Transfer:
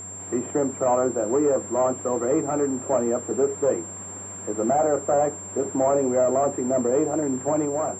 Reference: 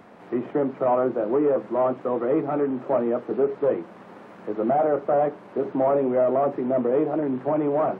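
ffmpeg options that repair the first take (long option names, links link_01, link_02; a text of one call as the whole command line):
ffmpeg -i in.wav -af "bandreject=frequency=96.9:width_type=h:width=4,bandreject=frequency=193.8:width_type=h:width=4,bandreject=frequency=290.7:width_type=h:width=4,bandreject=frequency=387.6:width_type=h:width=4,bandreject=frequency=7400:width=30,asetnsamples=nb_out_samples=441:pad=0,asendcmd='7.65 volume volume 3.5dB',volume=0dB" out.wav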